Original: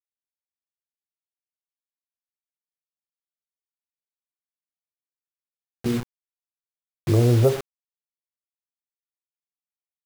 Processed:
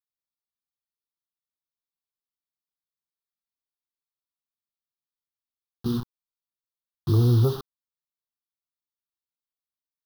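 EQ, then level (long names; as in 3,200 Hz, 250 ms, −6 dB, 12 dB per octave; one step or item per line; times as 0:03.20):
flat-topped bell 2,100 Hz −11 dB 1.1 octaves
phaser with its sweep stopped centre 2,200 Hz, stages 6
0.0 dB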